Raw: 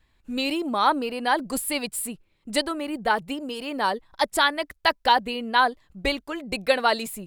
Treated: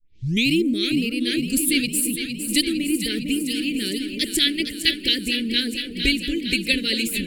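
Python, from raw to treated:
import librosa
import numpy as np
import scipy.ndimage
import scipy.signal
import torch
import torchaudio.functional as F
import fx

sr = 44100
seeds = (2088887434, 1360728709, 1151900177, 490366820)

y = fx.tape_start_head(x, sr, length_s=0.46)
y = scipy.signal.sosfilt(scipy.signal.ellip(3, 1.0, 80, [360.0, 2300.0], 'bandstop', fs=sr, output='sos'), y)
y = fx.echo_alternate(y, sr, ms=229, hz=1100.0, feedback_pct=85, wet_db=-7.0)
y = y * 10.0 ** (7.5 / 20.0)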